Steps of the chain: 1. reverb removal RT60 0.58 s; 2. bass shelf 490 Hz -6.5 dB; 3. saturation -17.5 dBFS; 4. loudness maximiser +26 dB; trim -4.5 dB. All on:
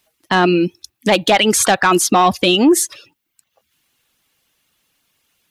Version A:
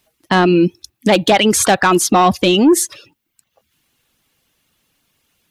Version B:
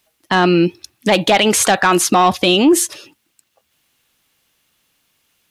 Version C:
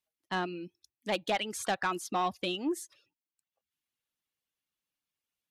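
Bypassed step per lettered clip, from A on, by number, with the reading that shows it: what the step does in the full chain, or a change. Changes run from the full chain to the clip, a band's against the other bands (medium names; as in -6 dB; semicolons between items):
2, 125 Hz band +3.5 dB; 1, 125 Hz band +1.5 dB; 4, crest factor change +3.0 dB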